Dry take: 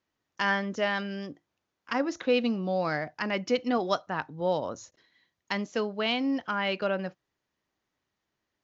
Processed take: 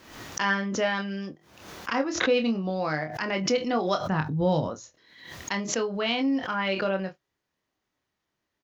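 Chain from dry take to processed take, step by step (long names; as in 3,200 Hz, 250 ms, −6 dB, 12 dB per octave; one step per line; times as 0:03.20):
0:04.00–0:04.68: bass and treble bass +15 dB, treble +4 dB
ambience of single reflections 26 ms −6 dB, 45 ms −18 dB
background raised ahead of every attack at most 68 dB per second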